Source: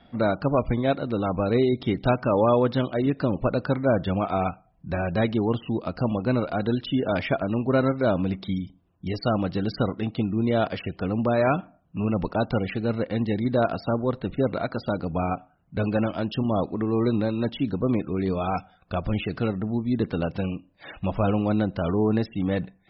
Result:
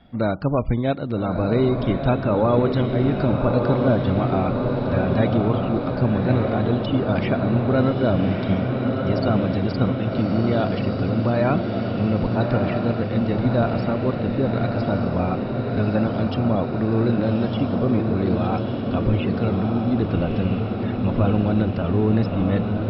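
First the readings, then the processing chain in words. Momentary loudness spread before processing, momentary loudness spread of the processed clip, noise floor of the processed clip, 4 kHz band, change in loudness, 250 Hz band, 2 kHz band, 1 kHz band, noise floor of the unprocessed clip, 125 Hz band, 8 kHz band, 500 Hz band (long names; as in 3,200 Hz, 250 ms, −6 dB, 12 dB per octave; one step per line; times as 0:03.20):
7 LU, 4 LU, −26 dBFS, +1.5 dB, +4.0 dB, +4.5 dB, +1.5 dB, +2.0 dB, −61 dBFS, +7.0 dB, can't be measured, +2.5 dB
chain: low-shelf EQ 220 Hz +7 dB
feedback delay with all-pass diffusion 1,220 ms, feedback 70%, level −3.5 dB
level −1 dB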